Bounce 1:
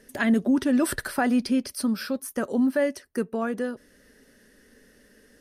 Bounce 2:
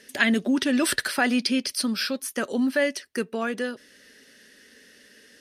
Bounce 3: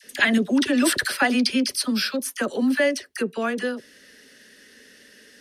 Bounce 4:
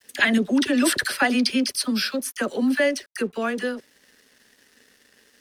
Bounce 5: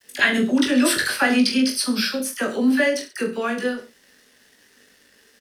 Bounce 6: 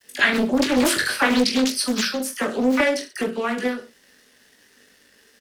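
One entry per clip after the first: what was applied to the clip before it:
meter weighting curve D
all-pass dispersion lows, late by 44 ms, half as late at 960 Hz; level +2.5 dB
dead-zone distortion −52 dBFS
reverse bouncing-ball delay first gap 20 ms, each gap 1.15×, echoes 5
highs frequency-modulated by the lows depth 0.74 ms

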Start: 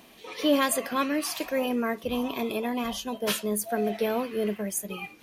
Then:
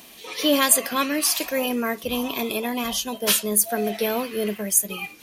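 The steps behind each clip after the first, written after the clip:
high-shelf EQ 3,100 Hz +11.5 dB
level +2 dB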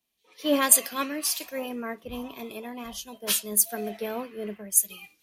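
multiband upward and downward expander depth 100%
level −8 dB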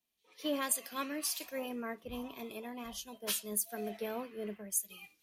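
downward compressor 3 to 1, threshold −26 dBFS, peak gain reduction 11.5 dB
level −6 dB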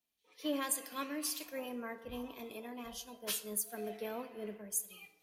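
feedback delay network reverb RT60 1.4 s, low-frequency decay 0.7×, high-frequency decay 0.4×, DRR 10.5 dB
level −2.5 dB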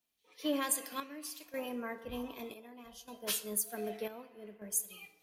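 square-wave tremolo 0.65 Hz, depth 65%, duty 65%
level +2.5 dB

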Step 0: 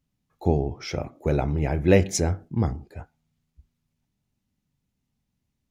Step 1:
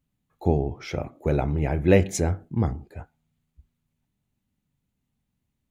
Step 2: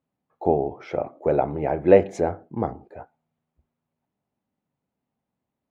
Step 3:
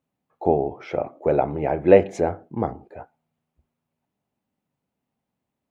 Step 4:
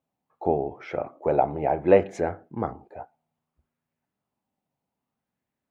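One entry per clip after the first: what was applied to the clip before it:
parametric band 5,300 Hz −7.5 dB 0.49 octaves
resonant band-pass 660 Hz, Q 1.2; level +7.5 dB
parametric band 2,700 Hz +3 dB 0.68 octaves; level +1 dB
auto-filter bell 0.64 Hz 720–1,800 Hz +7 dB; level −4.5 dB

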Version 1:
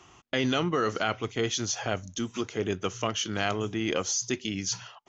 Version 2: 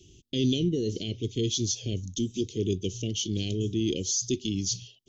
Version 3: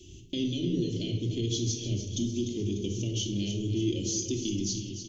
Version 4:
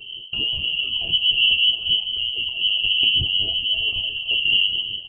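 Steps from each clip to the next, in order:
elliptic band-stop filter 390–3,300 Hz, stop band 80 dB; low-shelf EQ 110 Hz +9 dB; level +2 dB
downward compressor 2 to 1, threshold −40 dBFS, peak gain reduction 10.5 dB; repeating echo 297 ms, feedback 53%, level −10 dB; rectangular room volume 1,900 cubic metres, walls furnished, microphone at 2.6 metres; level +2 dB
phase shifter 0.66 Hz, delay 1.3 ms, feedback 59%; voice inversion scrambler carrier 3,100 Hz; level +5.5 dB

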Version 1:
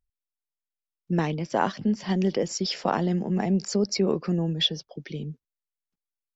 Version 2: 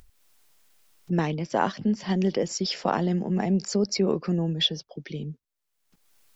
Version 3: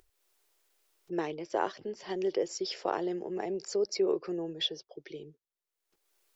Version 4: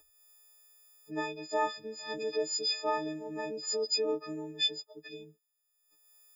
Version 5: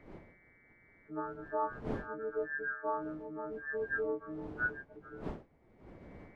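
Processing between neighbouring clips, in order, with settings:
upward compression, threshold −36 dBFS
low shelf with overshoot 280 Hz −9 dB, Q 3; level −8 dB
every partial snapped to a pitch grid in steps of 6 semitones; level −4 dB
hearing-aid frequency compression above 1,100 Hz 4 to 1; wind on the microphone 410 Hz −46 dBFS; level −4 dB

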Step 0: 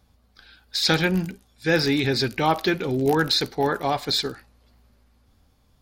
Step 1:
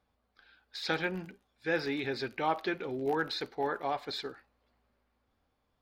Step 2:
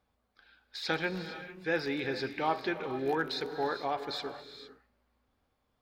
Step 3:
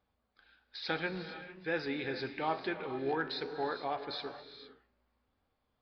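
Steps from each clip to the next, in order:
bass and treble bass −11 dB, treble −14 dB; level −8.5 dB
reverb whose tail is shaped and stops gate 480 ms rising, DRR 10 dB
downsampling to 11,025 Hz; flanger 1.1 Hz, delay 9.7 ms, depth 6.7 ms, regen +83%; level +1.5 dB

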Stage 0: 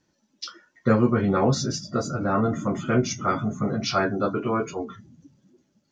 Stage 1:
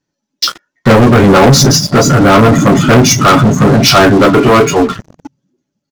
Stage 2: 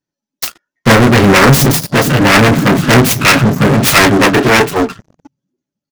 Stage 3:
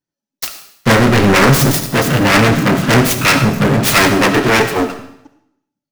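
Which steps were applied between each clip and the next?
comb filter 7.1 ms, depth 32%; leveller curve on the samples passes 5; level +5.5 dB
phase distortion by the signal itself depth 0.33 ms; expander for the loud parts 1.5 to 1, over −24 dBFS
convolution reverb RT60 0.75 s, pre-delay 25 ms, DRR 8.5 dB; level −3.5 dB

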